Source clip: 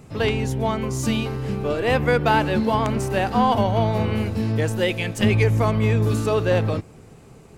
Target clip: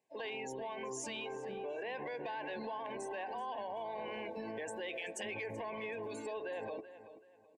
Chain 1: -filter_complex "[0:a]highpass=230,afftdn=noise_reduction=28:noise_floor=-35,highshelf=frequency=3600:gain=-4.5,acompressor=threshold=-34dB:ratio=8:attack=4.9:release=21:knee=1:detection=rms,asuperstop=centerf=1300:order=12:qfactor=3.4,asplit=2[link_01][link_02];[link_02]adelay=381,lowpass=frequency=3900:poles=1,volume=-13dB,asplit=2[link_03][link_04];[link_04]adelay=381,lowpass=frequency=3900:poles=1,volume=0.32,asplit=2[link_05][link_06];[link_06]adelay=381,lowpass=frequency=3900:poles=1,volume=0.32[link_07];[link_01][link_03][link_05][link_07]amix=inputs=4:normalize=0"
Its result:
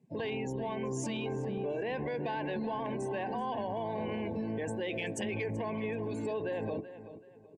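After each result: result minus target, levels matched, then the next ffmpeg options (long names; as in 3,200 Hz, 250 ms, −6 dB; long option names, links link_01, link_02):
250 Hz band +6.0 dB; downward compressor: peak gain reduction −4.5 dB
-filter_complex "[0:a]highpass=580,afftdn=noise_reduction=28:noise_floor=-35,highshelf=frequency=3600:gain=-4.5,acompressor=threshold=-34dB:ratio=8:attack=4.9:release=21:knee=1:detection=rms,asuperstop=centerf=1300:order=12:qfactor=3.4,asplit=2[link_01][link_02];[link_02]adelay=381,lowpass=frequency=3900:poles=1,volume=-13dB,asplit=2[link_03][link_04];[link_04]adelay=381,lowpass=frequency=3900:poles=1,volume=0.32,asplit=2[link_05][link_06];[link_06]adelay=381,lowpass=frequency=3900:poles=1,volume=0.32[link_07];[link_01][link_03][link_05][link_07]amix=inputs=4:normalize=0"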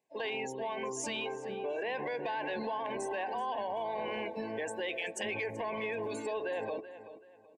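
downward compressor: peak gain reduction −5.5 dB
-filter_complex "[0:a]highpass=580,afftdn=noise_reduction=28:noise_floor=-35,highshelf=frequency=3600:gain=-4.5,acompressor=threshold=-40.5dB:ratio=8:attack=4.9:release=21:knee=1:detection=rms,asuperstop=centerf=1300:order=12:qfactor=3.4,asplit=2[link_01][link_02];[link_02]adelay=381,lowpass=frequency=3900:poles=1,volume=-13dB,asplit=2[link_03][link_04];[link_04]adelay=381,lowpass=frequency=3900:poles=1,volume=0.32,asplit=2[link_05][link_06];[link_06]adelay=381,lowpass=frequency=3900:poles=1,volume=0.32[link_07];[link_01][link_03][link_05][link_07]amix=inputs=4:normalize=0"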